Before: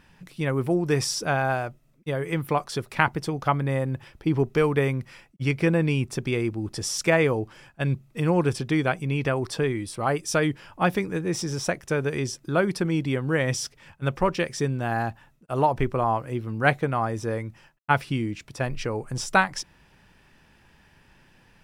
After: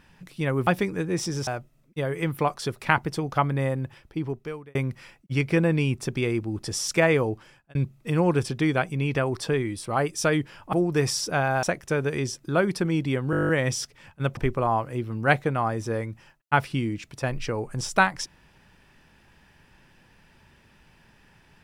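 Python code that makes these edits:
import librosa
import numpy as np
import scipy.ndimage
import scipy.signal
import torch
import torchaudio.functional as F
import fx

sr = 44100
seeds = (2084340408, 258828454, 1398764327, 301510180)

y = fx.edit(x, sr, fx.swap(start_s=0.67, length_s=0.9, other_s=10.83, other_length_s=0.8),
    fx.fade_out_span(start_s=3.74, length_s=1.11),
    fx.fade_out_span(start_s=7.43, length_s=0.42),
    fx.stutter(start_s=13.31, slice_s=0.02, count=10),
    fx.cut(start_s=14.19, length_s=1.55), tone=tone)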